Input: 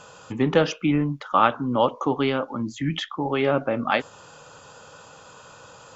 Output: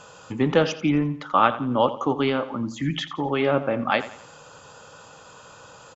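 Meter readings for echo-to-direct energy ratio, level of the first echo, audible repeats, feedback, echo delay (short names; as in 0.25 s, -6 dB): -14.0 dB, -15.0 dB, 3, 40%, 86 ms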